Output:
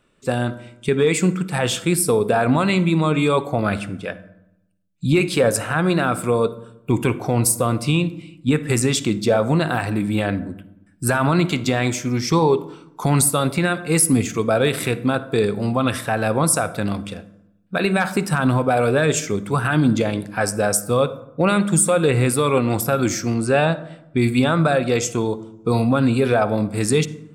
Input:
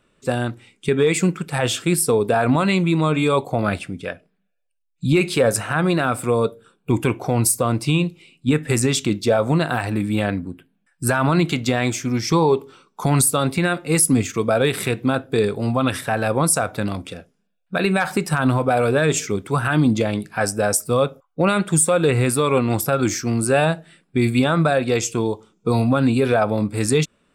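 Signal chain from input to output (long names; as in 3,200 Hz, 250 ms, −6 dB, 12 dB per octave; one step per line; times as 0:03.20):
0:23.34–0:24.17: low-pass filter 6,200 Hz 12 dB per octave
on a send: convolution reverb RT60 0.85 s, pre-delay 47 ms, DRR 15.5 dB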